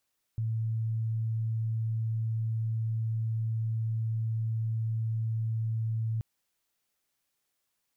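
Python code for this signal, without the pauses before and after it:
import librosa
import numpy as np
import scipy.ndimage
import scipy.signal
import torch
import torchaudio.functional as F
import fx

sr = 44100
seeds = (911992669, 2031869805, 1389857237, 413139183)

y = 10.0 ** (-27.5 / 20.0) * np.sin(2.0 * np.pi * (112.0 * (np.arange(round(5.83 * sr)) / sr)))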